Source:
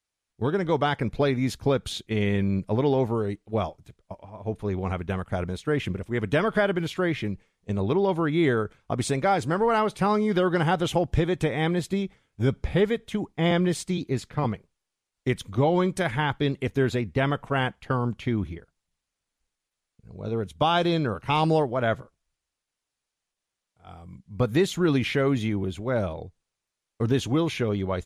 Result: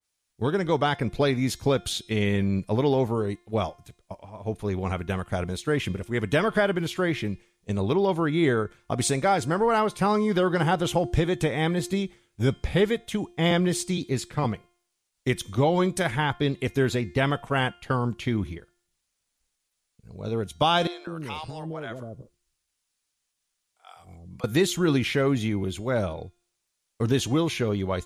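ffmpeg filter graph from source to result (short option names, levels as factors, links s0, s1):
-filter_complex "[0:a]asettb=1/sr,asplit=3[s0][s1][s2];[s0]atrim=end=20.874[s3];[s1]atrim=start=20.87:end=24.44,asetpts=PTS-STARTPTS,afade=t=in:d=0.004:c=qsin,afade=t=out:st=3.566:d=0.004:c=qsin,acompressor=threshold=0.0224:ratio=3:attack=3.2:release=140:knee=1:detection=peak,acrossover=split=600[s4][s5];[s4]adelay=200[s6];[s6][s5]amix=inputs=2:normalize=0,atrim=end_sample=157437[s7];[s2]atrim=start=24.436[s8];[s3][s7]acrossfade=d=0.004:c1=hsin:c2=qsin[s9];[s9][s8]acrossfade=d=0.004:c1=qsin:c2=hsin,highshelf=f=3500:g=9.5,bandreject=f=351.5:t=h:w=4,bandreject=f=703:t=h:w=4,bandreject=f=1054.5:t=h:w=4,bandreject=f=1406:t=h:w=4,bandreject=f=1757.5:t=h:w=4,bandreject=f=2109:t=h:w=4,bandreject=f=2460.5:t=h:w=4,bandreject=f=2812:t=h:w=4,bandreject=f=3163.5:t=h:w=4,bandreject=f=3515:t=h:w=4,bandreject=f=3866.5:t=h:w=4,bandreject=f=4218:t=h:w=4,bandreject=f=4569.5:t=h:w=4,bandreject=f=4921:t=h:w=4,bandreject=f=5272.5:t=h:w=4,bandreject=f=5624:t=h:w=4,bandreject=f=5975.5:t=h:w=4,bandreject=f=6327:t=h:w=4,bandreject=f=6678.5:t=h:w=4,bandreject=f=7030:t=h:w=4,bandreject=f=7381.5:t=h:w=4,bandreject=f=7733:t=h:w=4,bandreject=f=8084.5:t=h:w=4,bandreject=f=8436:t=h:w=4,bandreject=f=8787.5:t=h:w=4,bandreject=f=9139:t=h:w=4,adynamicequalizer=threshold=0.0158:dfrequency=1800:dqfactor=0.7:tfrequency=1800:tqfactor=0.7:attack=5:release=100:ratio=0.375:range=2.5:mode=cutabove:tftype=highshelf"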